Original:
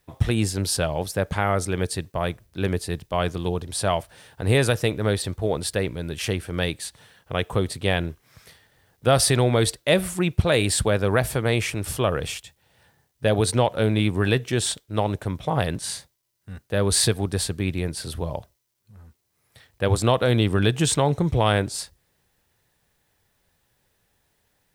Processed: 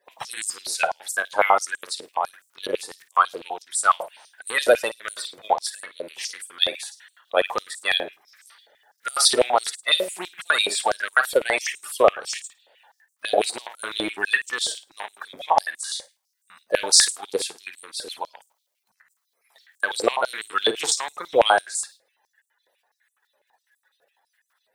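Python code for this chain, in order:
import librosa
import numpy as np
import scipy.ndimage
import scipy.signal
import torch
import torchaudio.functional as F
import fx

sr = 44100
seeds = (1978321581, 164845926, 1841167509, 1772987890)

p1 = fx.spec_quant(x, sr, step_db=30)
p2 = fx.level_steps(p1, sr, step_db=23)
p3 = p1 + (p2 * 10.0 ** (2.5 / 20.0))
p4 = fx.room_flutter(p3, sr, wall_m=9.2, rt60_s=0.27)
p5 = fx.filter_held_highpass(p4, sr, hz=12.0, low_hz=560.0, high_hz=7700.0)
y = p5 * 10.0 ** (-4.0 / 20.0)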